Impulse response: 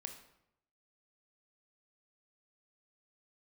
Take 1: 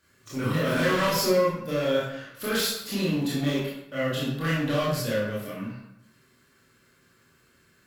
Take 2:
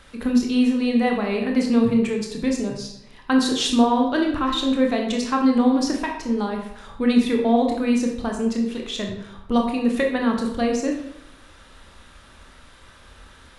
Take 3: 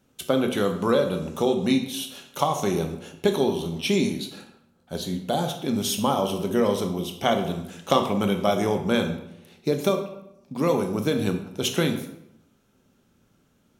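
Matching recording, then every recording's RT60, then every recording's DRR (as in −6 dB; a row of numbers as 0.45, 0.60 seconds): 3; 0.80, 0.80, 0.80 seconds; −8.0, 0.5, 5.0 decibels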